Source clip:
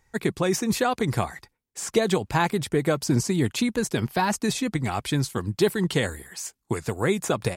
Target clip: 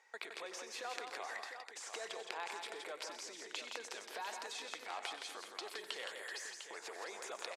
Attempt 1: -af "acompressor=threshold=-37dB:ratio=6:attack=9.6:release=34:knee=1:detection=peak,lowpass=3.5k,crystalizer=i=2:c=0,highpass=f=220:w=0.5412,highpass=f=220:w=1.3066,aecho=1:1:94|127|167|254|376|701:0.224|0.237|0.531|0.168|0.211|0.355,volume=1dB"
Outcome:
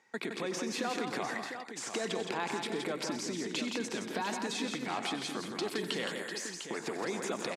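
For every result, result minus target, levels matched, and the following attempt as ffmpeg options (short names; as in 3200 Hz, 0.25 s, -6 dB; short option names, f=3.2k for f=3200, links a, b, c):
250 Hz band +15.0 dB; compressor: peak gain reduction -8 dB
-af "acompressor=threshold=-37dB:ratio=6:attack=9.6:release=34:knee=1:detection=peak,lowpass=3.5k,crystalizer=i=2:c=0,highpass=f=480:w=0.5412,highpass=f=480:w=1.3066,aecho=1:1:94|127|167|254|376|701:0.224|0.237|0.531|0.168|0.211|0.355,volume=1dB"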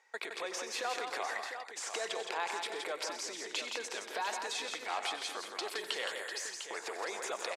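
compressor: peak gain reduction -8 dB
-af "acompressor=threshold=-46.5dB:ratio=6:attack=9.6:release=34:knee=1:detection=peak,lowpass=3.5k,crystalizer=i=2:c=0,highpass=f=480:w=0.5412,highpass=f=480:w=1.3066,aecho=1:1:94|127|167|254|376|701:0.224|0.237|0.531|0.168|0.211|0.355,volume=1dB"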